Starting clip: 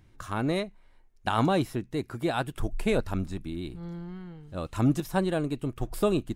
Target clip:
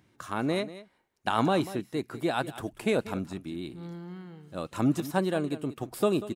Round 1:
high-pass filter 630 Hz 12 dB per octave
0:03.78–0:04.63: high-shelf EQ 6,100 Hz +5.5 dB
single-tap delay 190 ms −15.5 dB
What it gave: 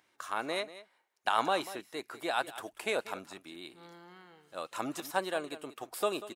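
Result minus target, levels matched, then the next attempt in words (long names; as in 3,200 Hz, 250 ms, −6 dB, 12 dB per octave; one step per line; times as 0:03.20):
125 Hz band −16.0 dB
high-pass filter 160 Hz 12 dB per octave
0:03.78–0:04.63: high-shelf EQ 6,100 Hz +5.5 dB
single-tap delay 190 ms −15.5 dB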